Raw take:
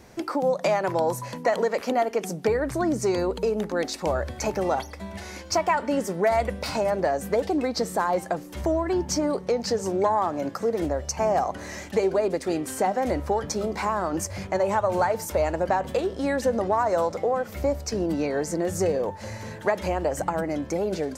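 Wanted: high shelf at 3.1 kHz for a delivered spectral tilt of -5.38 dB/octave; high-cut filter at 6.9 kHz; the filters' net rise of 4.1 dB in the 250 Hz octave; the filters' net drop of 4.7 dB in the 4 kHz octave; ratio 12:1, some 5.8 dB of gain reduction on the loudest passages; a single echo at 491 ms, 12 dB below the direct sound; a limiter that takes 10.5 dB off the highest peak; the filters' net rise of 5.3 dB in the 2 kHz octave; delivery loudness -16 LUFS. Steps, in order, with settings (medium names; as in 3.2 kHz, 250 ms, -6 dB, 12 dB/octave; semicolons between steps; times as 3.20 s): low-pass 6.9 kHz; peaking EQ 250 Hz +5.5 dB; peaking EQ 2 kHz +8.5 dB; treble shelf 3.1 kHz -4.5 dB; peaking EQ 4 kHz -3.5 dB; compression 12:1, threshold -22 dBFS; peak limiter -21.5 dBFS; delay 491 ms -12 dB; trim +14.5 dB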